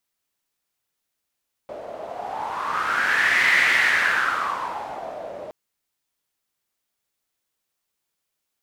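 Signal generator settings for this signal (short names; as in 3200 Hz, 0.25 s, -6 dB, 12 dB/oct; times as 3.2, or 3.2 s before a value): wind-like swept noise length 3.82 s, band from 590 Hz, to 2000 Hz, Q 6, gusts 1, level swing 17.5 dB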